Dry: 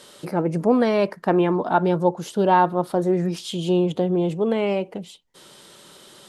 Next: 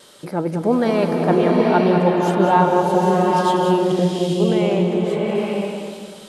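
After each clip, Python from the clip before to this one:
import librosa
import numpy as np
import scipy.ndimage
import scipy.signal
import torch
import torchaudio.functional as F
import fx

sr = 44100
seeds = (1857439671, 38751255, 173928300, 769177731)

y = fx.wow_flutter(x, sr, seeds[0], rate_hz=2.1, depth_cents=24.0)
y = y + 10.0 ** (-8.5 / 20.0) * np.pad(y, (int(197 * sr / 1000.0), 0))[:len(y)]
y = fx.rev_bloom(y, sr, seeds[1], attack_ms=860, drr_db=-1.5)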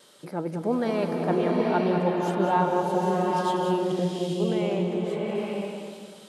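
y = scipy.signal.sosfilt(scipy.signal.butter(2, 100.0, 'highpass', fs=sr, output='sos'), x)
y = y * librosa.db_to_amplitude(-8.0)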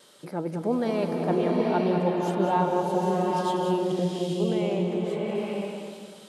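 y = fx.dynamic_eq(x, sr, hz=1500.0, q=1.3, threshold_db=-39.0, ratio=4.0, max_db=-4)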